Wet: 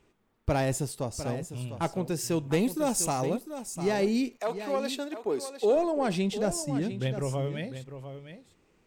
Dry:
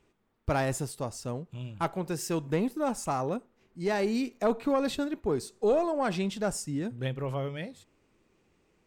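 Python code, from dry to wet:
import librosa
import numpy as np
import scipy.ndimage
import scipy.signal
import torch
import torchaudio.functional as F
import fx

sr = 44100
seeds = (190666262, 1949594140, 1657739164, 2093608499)

y = fx.high_shelf(x, sr, hz=fx.line((2.52, 2700.0), (3.25, 4100.0)), db=11.0, at=(2.52, 3.25), fade=0.02)
y = fx.highpass(y, sr, hz=fx.line((4.36, 770.0), (5.75, 270.0)), slope=12, at=(4.36, 5.75), fade=0.02)
y = fx.dynamic_eq(y, sr, hz=1300.0, q=1.3, threshold_db=-47.0, ratio=4.0, max_db=-7)
y = y + 10.0 ** (-11.0 / 20.0) * np.pad(y, (int(702 * sr / 1000.0), 0))[:len(y)]
y = F.gain(torch.from_numpy(y), 2.5).numpy()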